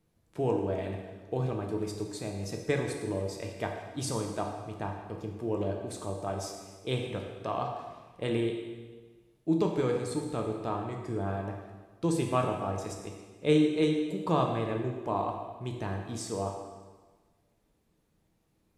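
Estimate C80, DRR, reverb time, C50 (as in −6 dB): 5.5 dB, 1.5 dB, 1.4 s, 4.0 dB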